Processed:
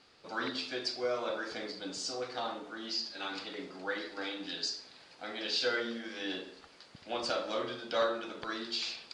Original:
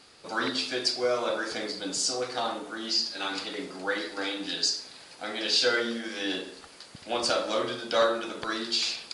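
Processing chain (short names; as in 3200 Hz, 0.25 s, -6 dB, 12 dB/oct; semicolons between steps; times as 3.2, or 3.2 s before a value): LPF 5200 Hz 12 dB/oct; gain -6.5 dB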